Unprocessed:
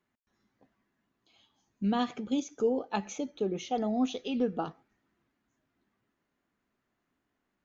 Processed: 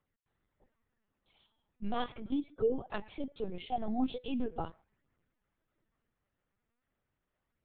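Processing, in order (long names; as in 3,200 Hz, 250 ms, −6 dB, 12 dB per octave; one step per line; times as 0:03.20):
flanger 0.39 Hz, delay 0 ms, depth 5.7 ms, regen −26%
linear-prediction vocoder at 8 kHz pitch kept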